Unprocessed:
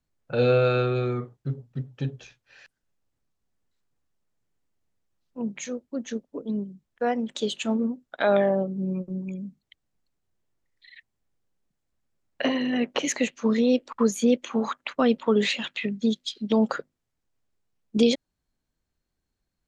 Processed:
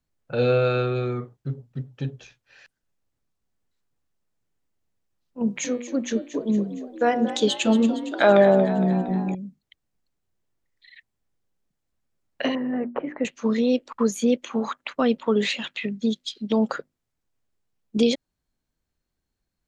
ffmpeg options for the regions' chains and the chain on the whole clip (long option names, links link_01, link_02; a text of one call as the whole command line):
ffmpeg -i in.wav -filter_complex "[0:a]asettb=1/sr,asplit=3[link_01][link_02][link_03];[link_01]atrim=end=5.414[link_04];[link_02]atrim=start=5.41:end=9.35,asetpts=PTS-STARTPTS,afade=type=in:duration=0.004:curve=qsin,afade=type=out:start_time=3.936:duration=0.004:curve=qsin,bandreject=frequency=121:width_type=h:width=4,bandreject=frequency=242:width_type=h:width=4,bandreject=frequency=363:width_type=h:width=4,bandreject=frequency=484:width_type=h:width=4,bandreject=frequency=605:width_type=h:width=4,bandreject=frequency=726:width_type=h:width=4,bandreject=frequency=847:width_type=h:width=4,bandreject=frequency=968:width_type=h:width=4,bandreject=frequency=1089:width_type=h:width=4,bandreject=frequency=1210:width_type=h:width=4,bandreject=frequency=1331:width_type=h:width=4,bandreject=frequency=1452:width_type=h:width=4,bandreject=frequency=1573:width_type=h:width=4,bandreject=frequency=1694:width_type=h:width=4,bandreject=frequency=1815:width_type=h:width=4,bandreject=frequency=1936:width_type=h:width=4,bandreject=frequency=2057:width_type=h:width=4,bandreject=frequency=2178:width_type=h:width=4,bandreject=frequency=2299:width_type=h:width=4,bandreject=frequency=2420:width_type=h:width=4,bandreject=frequency=2541:width_type=h:width=4,bandreject=frequency=2662:width_type=h:width=4,bandreject=frequency=2783:width_type=h:width=4,bandreject=frequency=2904:width_type=h:width=4,bandreject=frequency=3025:width_type=h:width=4,bandreject=frequency=3146:width_type=h:width=4,bandreject=frequency=3267:width_type=h:width=4,bandreject=frequency=3388:width_type=h:width=4,bandreject=frequency=3509:width_type=h:width=4,bandreject=frequency=3630:width_type=h:width=4,bandreject=frequency=3751:width_type=h:width=4,bandreject=frequency=3872:width_type=h:width=4,bandreject=frequency=3993:width_type=h:width=4,bandreject=frequency=4114:width_type=h:width=4,bandreject=frequency=4235:width_type=h:width=4,bandreject=frequency=4356:width_type=h:width=4,acontrast=67,asplit=7[link_05][link_06][link_07][link_08][link_09][link_10][link_11];[link_06]adelay=231,afreqshift=53,volume=-13dB[link_12];[link_07]adelay=462,afreqshift=106,volume=-17.6dB[link_13];[link_08]adelay=693,afreqshift=159,volume=-22.2dB[link_14];[link_09]adelay=924,afreqshift=212,volume=-26.7dB[link_15];[link_10]adelay=1155,afreqshift=265,volume=-31.3dB[link_16];[link_11]adelay=1386,afreqshift=318,volume=-35.9dB[link_17];[link_05][link_12][link_13][link_14][link_15][link_16][link_17]amix=inputs=7:normalize=0,atrim=end_sample=173754[link_18];[link_03]atrim=start=9.346[link_19];[link_04][link_18]acrossfade=duration=0.004:curve1=hsin:curve2=qsin[link_20];[link_20][link_19]acrossfade=duration=0.004:curve1=qsin:curve2=hsin,asettb=1/sr,asplit=3[link_21][link_22][link_23];[link_21]atrim=end=12.554[link_24];[link_22]atrim=start=12.55:end=13.25,asetpts=PTS-STARTPTS,afade=type=in:duration=0.004:curve=qsin,afade=type=out:start_time=0.696:duration=0.004:curve=qsin,lowpass=frequency=1500:width=0.5412,lowpass=frequency=1500:width=1.3066,bandreject=frequency=60:width_type=h:width=6,bandreject=frequency=120:width_type=h:width=6,bandreject=frequency=180:width_type=h:width=6,bandreject=frequency=240:width_type=h:width=6,bandreject=frequency=300:width_type=h:width=6,bandreject=frequency=360:width_type=h:width=6[link_25];[link_23]atrim=start=13.246[link_26];[link_24][link_25]acrossfade=duration=0.004:curve1=hsin:curve2=qsin[link_27];[link_27][link_26]acrossfade=duration=0.004:curve1=qsin:curve2=hsin" out.wav